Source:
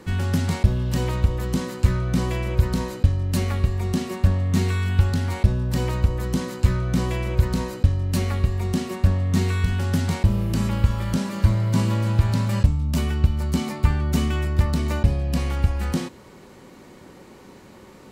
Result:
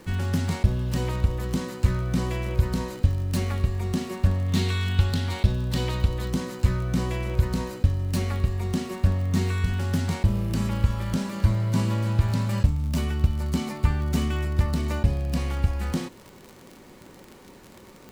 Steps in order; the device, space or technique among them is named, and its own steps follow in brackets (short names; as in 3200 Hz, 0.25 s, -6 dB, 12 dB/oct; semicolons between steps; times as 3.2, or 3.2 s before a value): 4.48–6.3 bell 3600 Hz +9.5 dB 0.83 oct; record under a worn stylus (tracing distortion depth 0.037 ms; crackle 43/s -30 dBFS; pink noise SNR 34 dB); gain -3 dB